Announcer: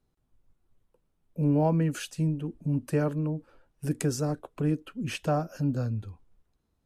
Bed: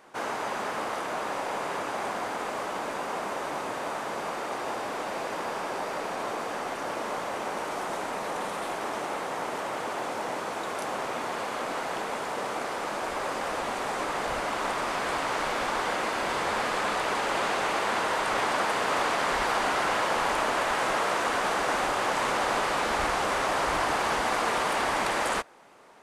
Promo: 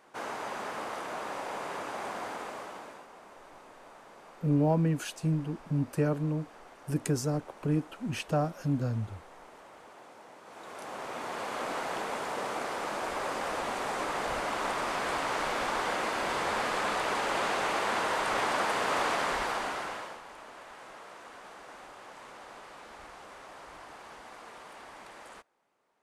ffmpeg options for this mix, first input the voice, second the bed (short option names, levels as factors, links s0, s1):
-filter_complex "[0:a]adelay=3050,volume=0.841[s0];[1:a]volume=3.76,afade=t=out:st=2.29:d=0.79:silence=0.199526,afade=t=in:st=10.42:d=1.23:silence=0.141254,afade=t=out:st=19.13:d=1.08:silence=0.112202[s1];[s0][s1]amix=inputs=2:normalize=0"